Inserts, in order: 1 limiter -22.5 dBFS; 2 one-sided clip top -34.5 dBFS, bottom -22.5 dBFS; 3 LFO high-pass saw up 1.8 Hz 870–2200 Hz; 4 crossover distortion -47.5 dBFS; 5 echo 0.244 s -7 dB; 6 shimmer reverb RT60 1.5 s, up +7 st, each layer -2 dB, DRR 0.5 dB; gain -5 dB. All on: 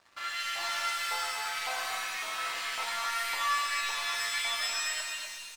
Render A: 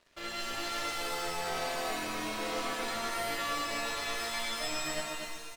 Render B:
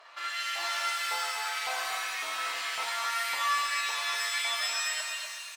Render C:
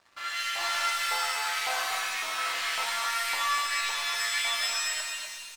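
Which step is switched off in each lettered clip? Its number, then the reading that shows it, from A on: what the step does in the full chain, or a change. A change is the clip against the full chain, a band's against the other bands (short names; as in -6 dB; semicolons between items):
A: 3, 250 Hz band +23.0 dB; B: 4, distortion -19 dB; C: 1, mean gain reduction 3.5 dB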